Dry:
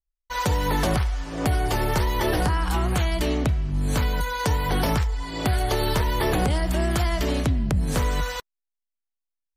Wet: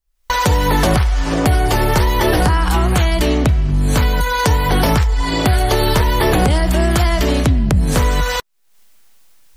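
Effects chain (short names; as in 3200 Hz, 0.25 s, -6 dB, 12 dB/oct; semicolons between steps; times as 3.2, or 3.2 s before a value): recorder AGC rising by 69 dB/s; gain +8.5 dB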